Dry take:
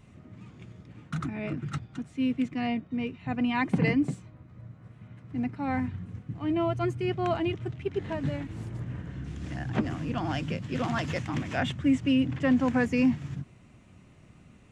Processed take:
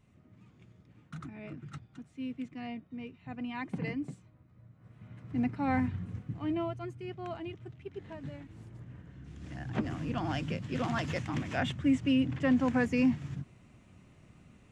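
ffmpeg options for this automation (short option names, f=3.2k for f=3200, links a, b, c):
-af "volume=9dB,afade=t=in:st=4.74:d=0.52:silence=0.281838,afade=t=out:st=6.16:d=0.65:silence=0.251189,afade=t=in:st=9.19:d=0.85:silence=0.354813"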